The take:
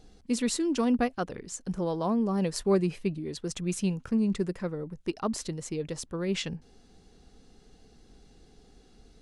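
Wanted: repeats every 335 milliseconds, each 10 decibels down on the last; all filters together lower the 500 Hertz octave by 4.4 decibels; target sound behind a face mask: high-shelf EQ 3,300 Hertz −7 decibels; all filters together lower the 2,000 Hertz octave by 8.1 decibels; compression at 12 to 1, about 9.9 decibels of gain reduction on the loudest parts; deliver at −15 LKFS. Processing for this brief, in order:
parametric band 500 Hz −5.5 dB
parametric band 2,000 Hz −8 dB
downward compressor 12 to 1, threshold −33 dBFS
high-shelf EQ 3,300 Hz −7 dB
repeating echo 335 ms, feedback 32%, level −10 dB
level +23.5 dB

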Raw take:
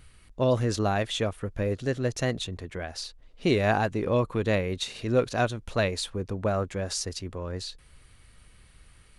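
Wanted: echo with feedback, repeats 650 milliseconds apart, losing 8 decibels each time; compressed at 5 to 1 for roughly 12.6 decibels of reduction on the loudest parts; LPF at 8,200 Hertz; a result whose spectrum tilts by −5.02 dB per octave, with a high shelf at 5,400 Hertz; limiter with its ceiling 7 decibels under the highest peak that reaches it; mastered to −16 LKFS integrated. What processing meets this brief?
low-pass filter 8,200 Hz
high-shelf EQ 5,400 Hz −6.5 dB
downward compressor 5 to 1, threshold −33 dBFS
brickwall limiter −29 dBFS
repeating echo 650 ms, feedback 40%, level −8 dB
level +23 dB

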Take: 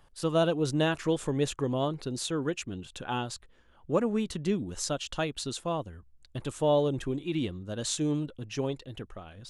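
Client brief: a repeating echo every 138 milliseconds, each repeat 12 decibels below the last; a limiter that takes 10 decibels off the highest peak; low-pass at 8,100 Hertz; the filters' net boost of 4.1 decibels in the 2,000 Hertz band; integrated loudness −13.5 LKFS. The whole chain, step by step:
low-pass filter 8,100 Hz
parametric band 2,000 Hz +6 dB
brickwall limiter −23.5 dBFS
repeating echo 138 ms, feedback 25%, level −12 dB
level +20.5 dB

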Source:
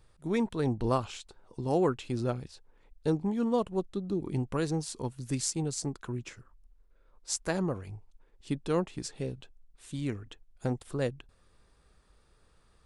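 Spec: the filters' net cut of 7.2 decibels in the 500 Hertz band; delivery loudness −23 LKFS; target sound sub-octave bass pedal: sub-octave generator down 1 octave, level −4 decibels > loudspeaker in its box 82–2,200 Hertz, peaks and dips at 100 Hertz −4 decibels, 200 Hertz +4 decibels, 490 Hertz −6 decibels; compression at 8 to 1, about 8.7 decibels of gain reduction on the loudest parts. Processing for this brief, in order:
parametric band 500 Hz −6 dB
downward compressor 8 to 1, threshold −34 dBFS
sub-octave generator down 1 octave, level −4 dB
loudspeaker in its box 82–2,200 Hz, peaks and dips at 100 Hz −4 dB, 200 Hz +4 dB, 490 Hz −6 dB
level +17.5 dB

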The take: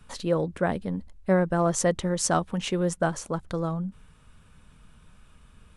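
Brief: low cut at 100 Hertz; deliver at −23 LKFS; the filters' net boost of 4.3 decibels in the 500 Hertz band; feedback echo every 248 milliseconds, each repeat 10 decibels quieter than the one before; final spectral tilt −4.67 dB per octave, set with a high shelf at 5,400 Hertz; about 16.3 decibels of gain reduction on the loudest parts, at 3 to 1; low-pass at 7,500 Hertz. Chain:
high-pass filter 100 Hz
low-pass filter 7,500 Hz
parametric band 500 Hz +5 dB
high-shelf EQ 5,400 Hz +5.5 dB
downward compressor 3 to 1, threshold −38 dBFS
repeating echo 248 ms, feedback 32%, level −10 dB
level +14.5 dB

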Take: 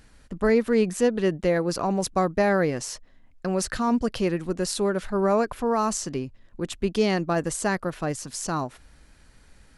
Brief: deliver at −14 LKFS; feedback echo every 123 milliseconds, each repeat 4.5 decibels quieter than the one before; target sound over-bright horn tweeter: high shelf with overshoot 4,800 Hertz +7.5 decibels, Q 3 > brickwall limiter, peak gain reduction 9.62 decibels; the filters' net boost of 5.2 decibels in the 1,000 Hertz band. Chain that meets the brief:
parametric band 1,000 Hz +7 dB
high shelf with overshoot 4,800 Hz +7.5 dB, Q 3
repeating echo 123 ms, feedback 60%, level −4.5 dB
level +8 dB
brickwall limiter −4 dBFS

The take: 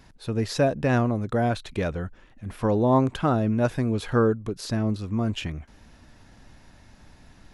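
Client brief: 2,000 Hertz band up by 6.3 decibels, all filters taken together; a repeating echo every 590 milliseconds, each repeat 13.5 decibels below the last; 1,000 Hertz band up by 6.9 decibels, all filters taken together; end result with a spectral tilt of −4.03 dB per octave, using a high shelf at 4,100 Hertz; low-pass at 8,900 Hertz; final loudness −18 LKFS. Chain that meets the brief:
low-pass filter 8,900 Hz
parametric band 1,000 Hz +8 dB
parametric band 2,000 Hz +6 dB
high-shelf EQ 4,100 Hz −4.5 dB
repeating echo 590 ms, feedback 21%, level −13.5 dB
level +4.5 dB

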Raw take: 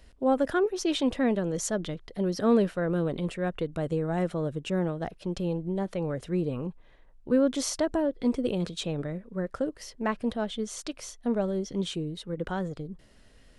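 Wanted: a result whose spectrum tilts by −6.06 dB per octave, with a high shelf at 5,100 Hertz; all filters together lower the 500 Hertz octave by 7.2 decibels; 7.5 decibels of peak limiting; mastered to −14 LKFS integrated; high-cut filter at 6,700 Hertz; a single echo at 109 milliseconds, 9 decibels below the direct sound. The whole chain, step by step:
low-pass filter 6,700 Hz
parametric band 500 Hz −9 dB
high-shelf EQ 5,100 Hz −9 dB
brickwall limiter −23 dBFS
single-tap delay 109 ms −9 dB
level +19.5 dB

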